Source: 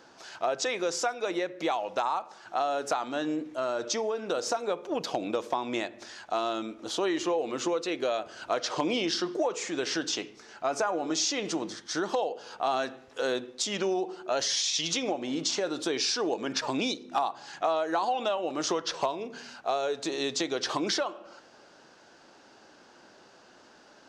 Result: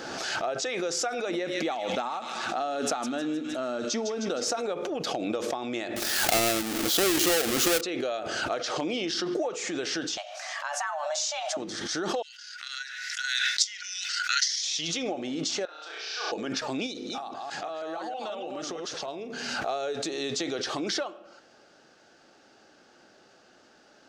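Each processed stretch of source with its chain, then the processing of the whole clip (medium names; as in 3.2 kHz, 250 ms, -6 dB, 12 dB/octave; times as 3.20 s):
1.29–4.44 s: peaking EQ 240 Hz +11.5 dB 0.33 oct + feedback echo behind a high-pass 155 ms, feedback 57%, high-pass 2.1 kHz, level -6 dB
5.96–7.81 s: square wave that keeps the level + treble shelf 2.8 kHz +10 dB
10.17–11.57 s: brick-wall FIR high-pass 250 Hz + frequency shift +300 Hz
12.22–14.63 s: rippled Chebyshev high-pass 1.4 kHz, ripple 9 dB + transient shaper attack +12 dB, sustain +3 dB
15.65–16.32 s: ladder high-pass 710 Hz, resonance 25% + distance through air 180 m + flutter echo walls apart 5.7 m, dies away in 1.3 s
16.86–19.08 s: chunks repeated in reverse 160 ms, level -2 dB + high-pass 49 Hz + compression 3:1, threshold -31 dBFS
whole clip: band-stop 990 Hz, Q 5.4; swell ahead of each attack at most 27 dB/s; trim -2 dB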